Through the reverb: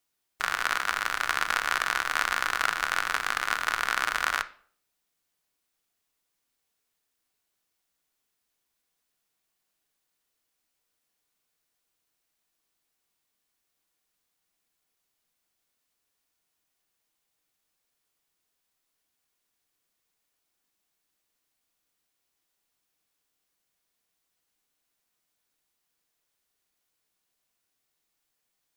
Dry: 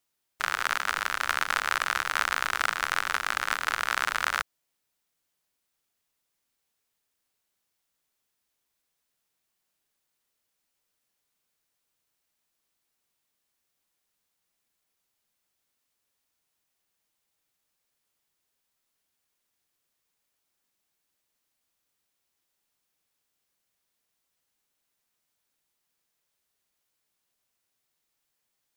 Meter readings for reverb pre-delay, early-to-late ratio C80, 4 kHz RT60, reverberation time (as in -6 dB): 3 ms, 21.5 dB, 0.40 s, 0.55 s